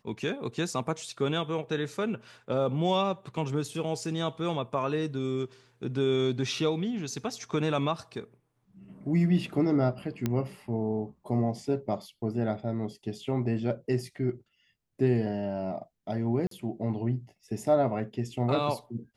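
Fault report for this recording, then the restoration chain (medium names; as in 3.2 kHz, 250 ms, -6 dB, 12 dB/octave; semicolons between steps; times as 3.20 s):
10.26 s: pop -15 dBFS
16.47–16.51 s: dropout 43 ms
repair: de-click; interpolate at 16.47 s, 43 ms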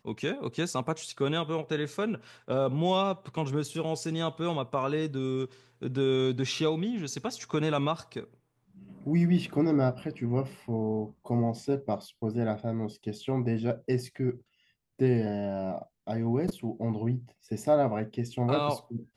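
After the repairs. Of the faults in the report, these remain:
10.26 s: pop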